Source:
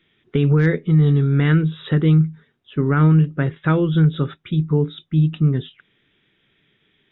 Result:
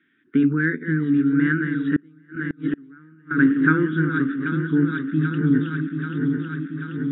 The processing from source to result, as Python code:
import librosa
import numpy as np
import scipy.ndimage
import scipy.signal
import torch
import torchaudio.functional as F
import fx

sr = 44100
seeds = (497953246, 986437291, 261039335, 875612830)

y = fx.reverse_delay_fb(x, sr, ms=393, feedback_pct=78, wet_db=-7.0)
y = fx.double_bandpass(y, sr, hz=660.0, octaves=2.5)
y = fx.gate_flip(y, sr, shuts_db=-24.0, range_db=-30, at=(1.96, 3.31))
y = fx.rider(y, sr, range_db=5, speed_s=2.0)
y = y * librosa.db_to_amplitude(8.5)